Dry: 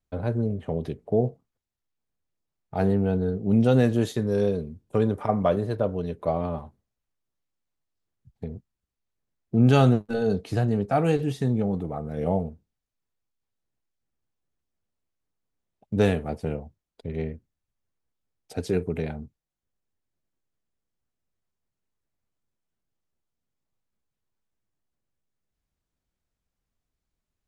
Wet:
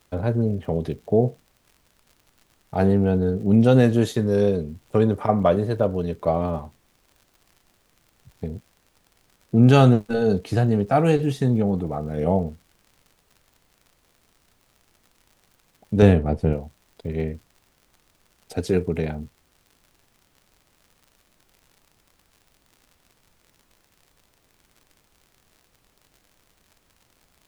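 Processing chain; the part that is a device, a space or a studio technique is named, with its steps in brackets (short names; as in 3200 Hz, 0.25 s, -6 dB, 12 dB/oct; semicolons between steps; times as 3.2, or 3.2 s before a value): vinyl LP (crackle 77/s -46 dBFS; pink noise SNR 40 dB); 16.02–16.53 tilt -2 dB/oct; gain +4 dB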